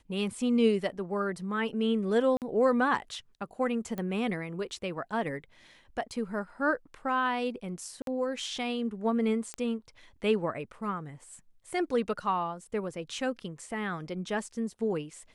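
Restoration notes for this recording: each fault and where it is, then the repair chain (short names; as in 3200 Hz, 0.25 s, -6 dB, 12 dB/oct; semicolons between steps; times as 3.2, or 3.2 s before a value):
2.37–2.42 gap 48 ms
3.98 pop -23 dBFS
8.02–8.07 gap 52 ms
9.54 pop -22 dBFS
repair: de-click; interpolate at 2.37, 48 ms; interpolate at 8.02, 52 ms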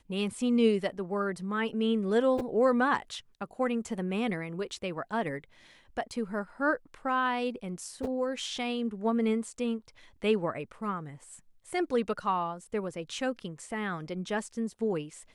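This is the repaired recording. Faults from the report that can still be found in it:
none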